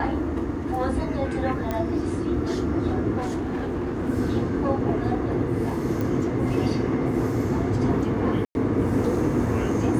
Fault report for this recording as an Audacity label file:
1.710000	1.710000	click −14 dBFS
3.170000	4.100000	clipping −24 dBFS
6.010000	6.010000	click
8.450000	8.550000	drop-out 101 ms

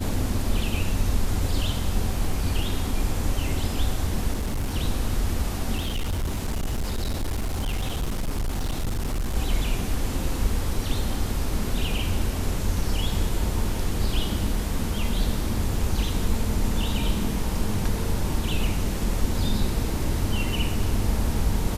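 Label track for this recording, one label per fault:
4.340000	4.760000	clipping −22.5 dBFS
5.760000	9.350000	clipping −22.5 dBFS

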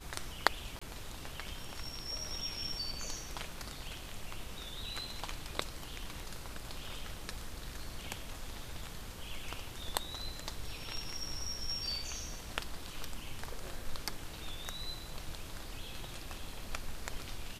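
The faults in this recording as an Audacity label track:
0.790000	0.810000	drop-out 25 ms

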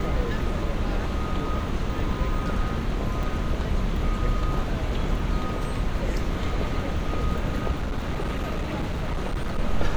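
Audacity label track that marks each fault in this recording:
3.230000	3.230000	drop-out 4.6 ms
7.710000	9.590000	clipping −23 dBFS

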